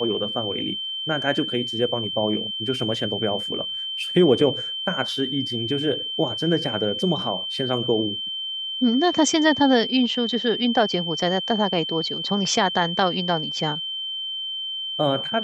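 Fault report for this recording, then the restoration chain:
whistle 3,100 Hz −27 dBFS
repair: notch filter 3,100 Hz, Q 30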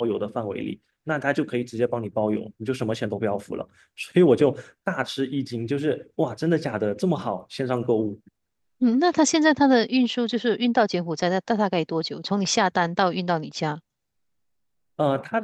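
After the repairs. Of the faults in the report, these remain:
none of them is left

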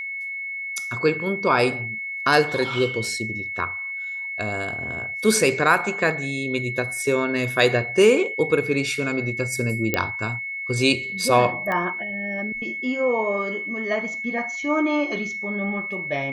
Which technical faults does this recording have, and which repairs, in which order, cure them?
whistle 2,200 Hz −28 dBFS
0:09.94: click −6 dBFS
0:11.72: click −15 dBFS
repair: click removal
notch filter 2,200 Hz, Q 30

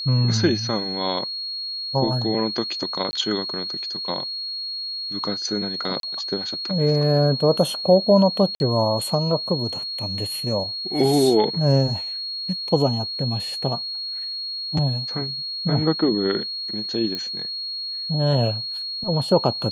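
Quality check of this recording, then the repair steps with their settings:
whistle 4,300 Hz −27 dBFS
0:03.11–0:03.13: drop-out 20 ms
0:06.00–0:06.03: drop-out 32 ms
0:08.55–0:08.60: drop-out 51 ms
0:17.15: click −14 dBFS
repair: click removal
notch filter 4,300 Hz, Q 30
repair the gap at 0:03.11, 20 ms
repair the gap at 0:06.00, 32 ms
repair the gap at 0:08.55, 51 ms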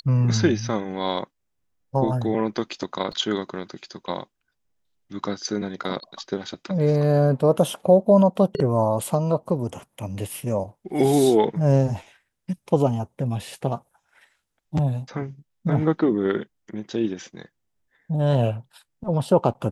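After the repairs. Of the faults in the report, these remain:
none of them is left

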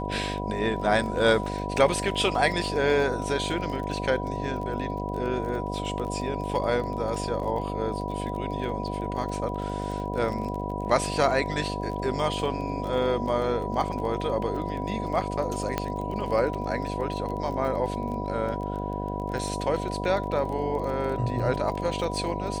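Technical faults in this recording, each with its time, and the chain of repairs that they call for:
mains buzz 50 Hz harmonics 15 −32 dBFS
surface crackle 24 per second −33 dBFS
whistle 980 Hz −34 dBFS
0:15.78: click −12 dBFS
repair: click removal
notch filter 980 Hz, Q 30
hum removal 50 Hz, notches 15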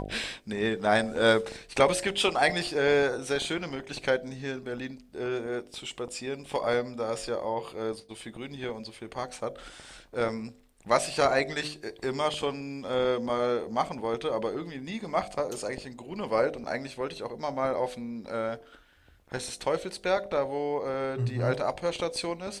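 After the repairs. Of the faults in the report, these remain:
none of them is left

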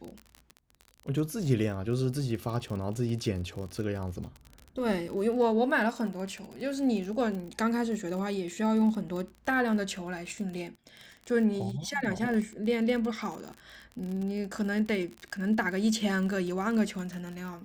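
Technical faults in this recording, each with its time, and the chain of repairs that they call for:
surface crackle 41 per second −35 dBFS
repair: click removal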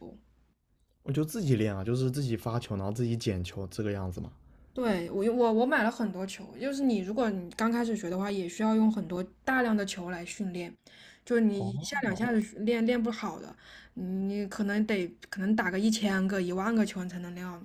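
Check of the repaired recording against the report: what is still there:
none of them is left

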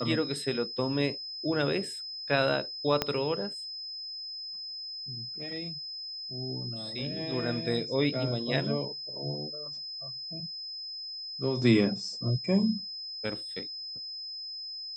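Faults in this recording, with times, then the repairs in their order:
whistle 5,100 Hz −37 dBFS
0:03.02: click −11 dBFS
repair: click removal
notch filter 5,100 Hz, Q 30

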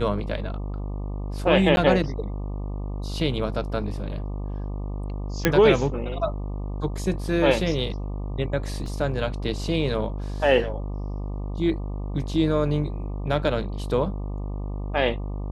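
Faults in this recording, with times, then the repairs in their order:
mains buzz 50 Hz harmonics 24 −30 dBFS
0:01.76–0:01.77: drop-out 11 ms
0:05.45: click −3 dBFS
0:08.86: drop-out 2.8 ms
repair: click removal
hum removal 50 Hz, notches 24
repair the gap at 0:01.76, 11 ms
repair the gap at 0:08.86, 2.8 ms

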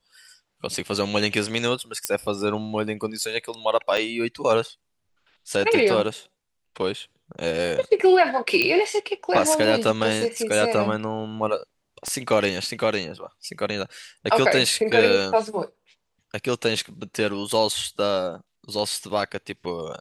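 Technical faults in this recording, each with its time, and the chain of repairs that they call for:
0:02.05: click −5 dBFS
0:03.97–0:03.98: drop-out 6.5 ms
0:08.62: click −8 dBFS
0:12.08: click −16 dBFS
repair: click removal
repair the gap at 0:03.97, 6.5 ms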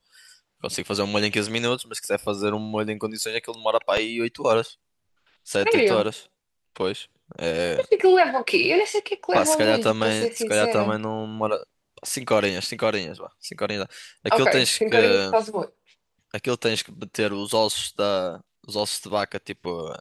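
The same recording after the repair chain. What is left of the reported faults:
0:12.08: click

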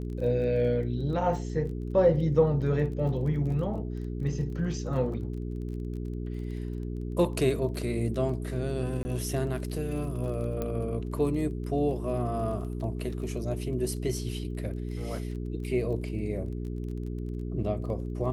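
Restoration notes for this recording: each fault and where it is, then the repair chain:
surface crackle 20 per second −39 dBFS
mains hum 60 Hz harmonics 7 −34 dBFS
0:09.03–0:09.05: drop-out 20 ms
0:10.62: click −19 dBFS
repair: click removal
hum removal 60 Hz, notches 7
repair the gap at 0:09.03, 20 ms

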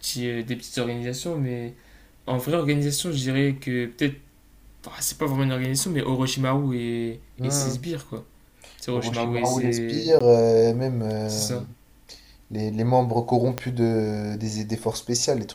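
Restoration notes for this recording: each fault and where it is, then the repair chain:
0:10.19–0:10.21: drop-out 15 ms
0:13.58: click −11 dBFS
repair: click removal
repair the gap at 0:10.19, 15 ms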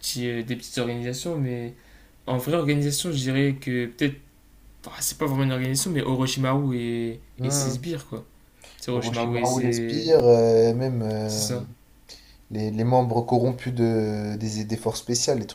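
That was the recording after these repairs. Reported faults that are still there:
0:13.58: click

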